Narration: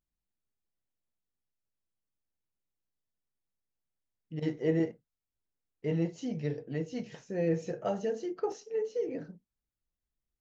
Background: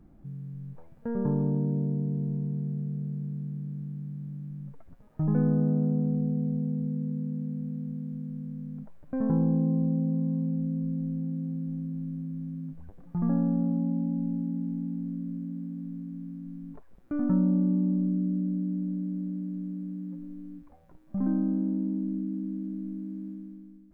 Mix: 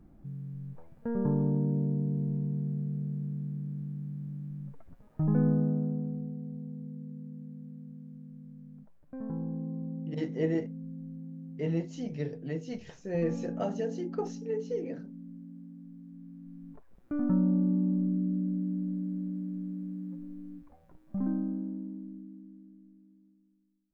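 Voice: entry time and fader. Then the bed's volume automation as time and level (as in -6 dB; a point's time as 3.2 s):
5.75 s, -1.0 dB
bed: 5.48 s -1 dB
6.38 s -11 dB
15.97 s -11 dB
17.13 s -2 dB
21.12 s -2 dB
23.34 s -26 dB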